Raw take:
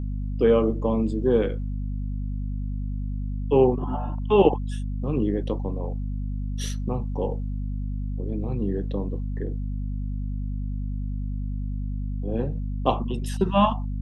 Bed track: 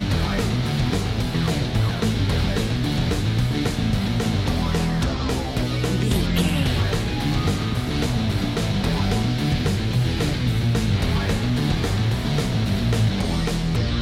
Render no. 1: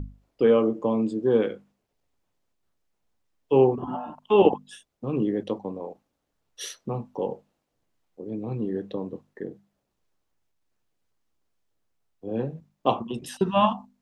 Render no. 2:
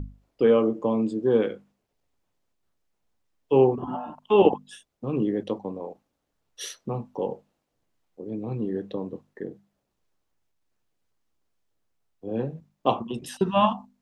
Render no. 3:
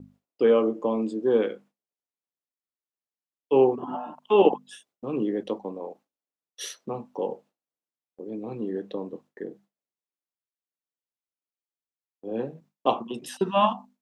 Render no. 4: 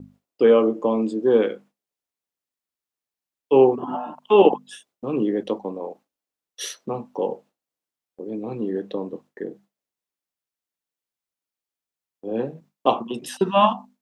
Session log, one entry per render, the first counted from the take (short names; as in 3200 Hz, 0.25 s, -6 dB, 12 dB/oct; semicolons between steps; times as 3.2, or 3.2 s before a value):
notches 50/100/150/200/250 Hz
nothing audible
HPF 230 Hz 12 dB/oct; gate with hold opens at -48 dBFS
gain +4.5 dB; limiter -3 dBFS, peak gain reduction 1.5 dB